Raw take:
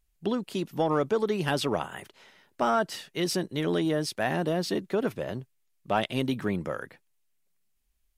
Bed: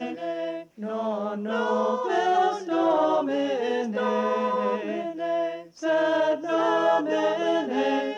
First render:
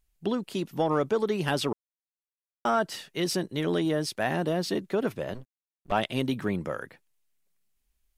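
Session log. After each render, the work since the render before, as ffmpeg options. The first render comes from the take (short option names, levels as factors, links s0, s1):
-filter_complex "[0:a]asettb=1/sr,asplit=3[s0][s1][s2];[s0]atrim=end=5.344[s3];[s1]atrim=start=5.34:end=5.92,asetpts=PTS-STARTPTS,afade=t=in:d=0.004:c=qsin,afade=t=out:st=0.576:d=0.004:c=qsin,aeval=exprs='max(val(0),0)':c=same[s4];[s2]atrim=start=5.916[s5];[s3][s4]acrossfade=d=0.004:c1=hsin:c2=qsin[s6];[s6][s5]acrossfade=d=0.004:c1=qsin:c2=hsin,asplit=3[s7][s8][s9];[s7]atrim=end=1.73,asetpts=PTS-STARTPTS,afade=t=out:st=1.726:d=0.004:c=hsin[s10];[s8]atrim=start=1.73:end=2.65,asetpts=PTS-STARTPTS,volume=0[s11];[s9]atrim=start=2.65,asetpts=PTS-STARTPTS,afade=t=in:d=0.004:c=hsin[s12];[s10][s11][s12]concat=n=3:v=0:a=1"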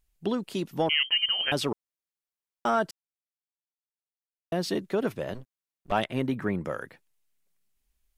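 -filter_complex "[0:a]asettb=1/sr,asplit=3[s0][s1][s2];[s0]atrim=end=0.894[s3];[s1]atrim=start=0.89:end=1.52,asetpts=PTS-STARTPTS,afade=t=in:d=0.004:c=qsin,afade=t=out:st=0.626:d=0.004:c=qsin,lowpass=f=2800:t=q:w=0.5098,lowpass=f=2800:t=q:w=0.6013,lowpass=f=2800:t=q:w=0.9,lowpass=f=2800:t=q:w=2.563,afreqshift=-3300[s4];[s2]atrim=start=1.516[s5];[s3][s4]acrossfade=d=0.004:c1=hsin:c2=qsin[s6];[s6][s5]acrossfade=d=0.004:c1=qsin:c2=hsin,asettb=1/sr,asplit=3[s7][s8][s9];[s7]atrim=end=6.044[s10];[s8]atrim=start=6.04:end=6.65,asetpts=PTS-STARTPTS,afade=t=in:d=0.004:c=qsin,afade=t=out:st=0.606:d=0.004:c=qsin,highshelf=f=2500:t=q:w=1.5:g=-7.5[s11];[s9]atrim=start=6.646[s12];[s10][s11]acrossfade=d=0.004:c1=hsin:c2=qsin[s13];[s13][s12]acrossfade=d=0.004:c1=qsin:c2=hsin,asplit=3[s14][s15][s16];[s14]atrim=end=2.91,asetpts=PTS-STARTPTS,afade=t=out:st=2.906:d=0.004:c=hsin[s17];[s15]atrim=start=2.91:end=4.52,asetpts=PTS-STARTPTS,volume=0[s18];[s16]atrim=start=4.52,asetpts=PTS-STARTPTS,afade=t=in:d=0.004:c=hsin[s19];[s17][s18][s19]concat=n=3:v=0:a=1"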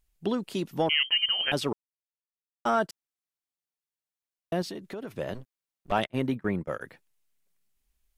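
-filter_complex "[0:a]asettb=1/sr,asplit=3[s0][s1][s2];[s0]atrim=end=1.524[s3];[s1]atrim=start=1.52:end=2.89,asetpts=PTS-STARTPTS,afade=t=in:d=0.004:c=qsin,afade=t=out:st=1.366:d=0.004:c=qsin,agate=range=0.0224:threshold=0.0355:ratio=3:release=100:detection=peak[s4];[s2]atrim=start=2.886[s5];[s3][s4]acrossfade=d=0.004:c1=hsin:c2=qsin[s6];[s6][s5]acrossfade=d=0.004:c1=qsin:c2=hsin,asettb=1/sr,asplit=3[s7][s8][s9];[s7]atrim=end=4.624[s10];[s8]atrim=start=4.62:end=5.16,asetpts=PTS-STARTPTS,afade=t=in:d=0.004:c=qsin,afade=t=out:st=0.536:d=0.004:c=qsin,acompressor=threshold=0.0158:ratio=4:attack=3.2:release=140:knee=1:detection=peak[s11];[s9]atrim=start=5.156[s12];[s10][s11]acrossfade=d=0.004:c1=hsin:c2=qsin[s13];[s13][s12]acrossfade=d=0.004:c1=qsin:c2=hsin,asettb=1/sr,asplit=3[s14][s15][s16];[s14]atrim=end=5.984[s17];[s15]atrim=start=5.98:end=6.81,asetpts=PTS-STARTPTS,afade=t=in:d=0.004:c=qsin,afade=t=out:st=0.826:d=0.004:c=qsin,agate=range=0.0501:threshold=0.0178:ratio=16:release=100:detection=peak[s18];[s16]atrim=start=6.806[s19];[s17][s18]acrossfade=d=0.004:c1=hsin:c2=qsin[s20];[s20][s19]acrossfade=d=0.004:c1=qsin:c2=hsin"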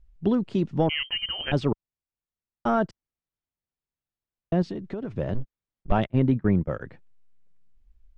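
-af "lowpass=f=8000:w=0.5412,lowpass=f=8000:w=1.3066,aemphasis=mode=reproduction:type=riaa"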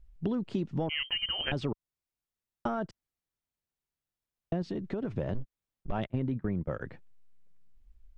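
-af "alimiter=limit=0.158:level=0:latency=1,acompressor=threshold=0.0398:ratio=6"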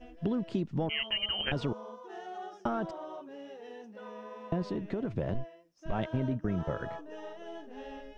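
-filter_complex "[1:a]volume=0.0944[s0];[0:a][s0]amix=inputs=2:normalize=0"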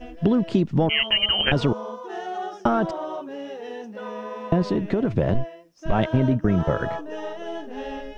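-af "volume=3.76"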